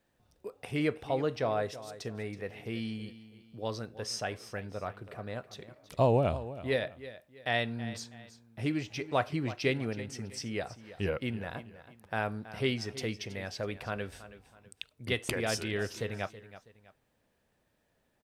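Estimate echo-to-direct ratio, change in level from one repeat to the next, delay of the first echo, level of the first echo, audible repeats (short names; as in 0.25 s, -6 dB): -14.5 dB, -9.0 dB, 0.325 s, -15.0 dB, 2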